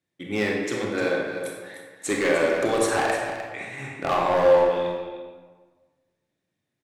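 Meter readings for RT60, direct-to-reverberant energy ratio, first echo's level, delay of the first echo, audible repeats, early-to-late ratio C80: 1.5 s, -1.5 dB, -10.5 dB, 303 ms, 1, 3.0 dB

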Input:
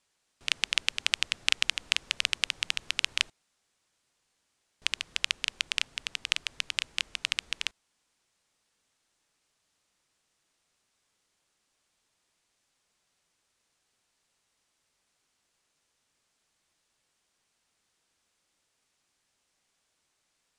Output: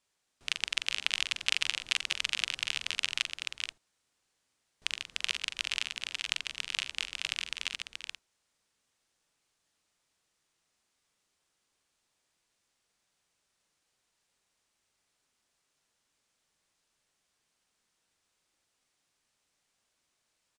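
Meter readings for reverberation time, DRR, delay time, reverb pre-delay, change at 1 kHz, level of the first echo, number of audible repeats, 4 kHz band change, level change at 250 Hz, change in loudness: no reverb, no reverb, 42 ms, no reverb, -2.5 dB, -8.0 dB, 4, -2.5 dB, -2.5 dB, -3.0 dB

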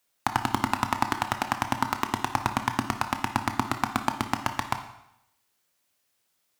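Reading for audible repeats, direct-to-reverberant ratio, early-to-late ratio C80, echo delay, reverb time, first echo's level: no echo, 7.0 dB, 12.5 dB, no echo, 0.80 s, no echo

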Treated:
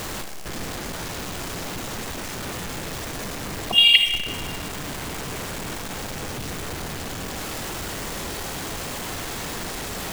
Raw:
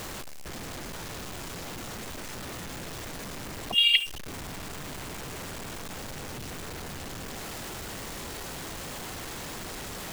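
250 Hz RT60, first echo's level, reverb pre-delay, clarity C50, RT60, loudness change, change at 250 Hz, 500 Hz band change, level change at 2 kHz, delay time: 1.8 s, no echo, 32 ms, 7.5 dB, 1.8 s, +7.5 dB, +7.0 dB, +7.5 dB, +7.5 dB, no echo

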